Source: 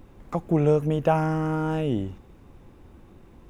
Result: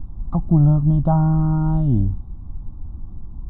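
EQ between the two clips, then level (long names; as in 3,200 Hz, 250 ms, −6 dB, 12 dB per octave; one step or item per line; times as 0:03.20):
Butterworth band-reject 2,500 Hz, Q 1.4
spectral tilt −4.5 dB per octave
phaser with its sweep stopped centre 1,700 Hz, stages 6
0.0 dB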